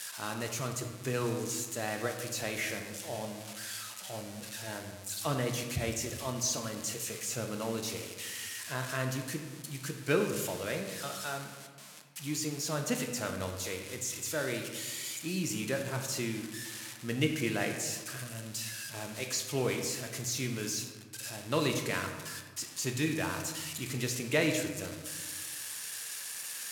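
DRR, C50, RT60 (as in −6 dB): 3.5 dB, 6.5 dB, 1.4 s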